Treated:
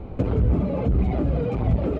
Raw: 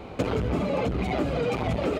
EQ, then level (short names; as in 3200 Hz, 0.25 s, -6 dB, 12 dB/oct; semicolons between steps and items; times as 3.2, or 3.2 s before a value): tilt -4 dB/oct; -5.0 dB